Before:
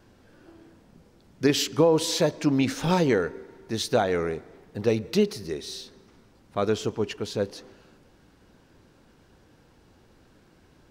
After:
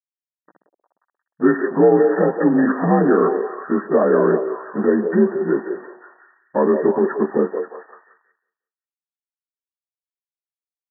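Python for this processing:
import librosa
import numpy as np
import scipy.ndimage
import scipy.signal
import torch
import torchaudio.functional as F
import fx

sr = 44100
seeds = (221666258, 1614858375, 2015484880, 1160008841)

p1 = fx.partial_stretch(x, sr, pct=86)
p2 = fx.over_compress(p1, sr, threshold_db=-31.0, ratio=-1.0)
p3 = p1 + (p2 * librosa.db_to_amplitude(1.5))
p4 = np.sign(p3) * np.maximum(np.abs(p3) - 10.0 ** (-37.0 / 20.0), 0.0)
p5 = fx.brickwall_bandpass(p4, sr, low_hz=160.0, high_hz=1900.0)
p6 = fx.echo_stepped(p5, sr, ms=178, hz=510.0, octaves=0.7, feedback_pct=70, wet_db=-5.0)
y = p6 * librosa.db_to_amplitude(7.5)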